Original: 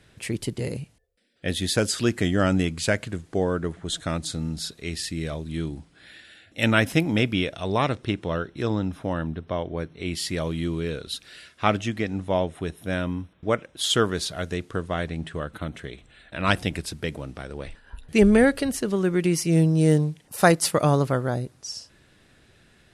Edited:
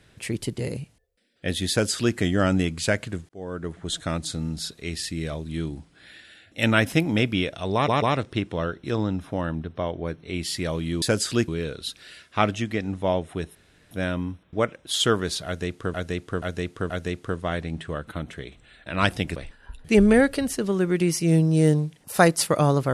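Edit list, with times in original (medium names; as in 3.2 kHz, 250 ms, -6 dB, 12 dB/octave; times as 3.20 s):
1.70–2.16 s: copy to 10.74 s
3.29–3.84 s: fade in
7.74 s: stutter 0.14 s, 3 plays
12.81 s: insert room tone 0.36 s
14.36–14.84 s: loop, 4 plays
16.82–17.60 s: delete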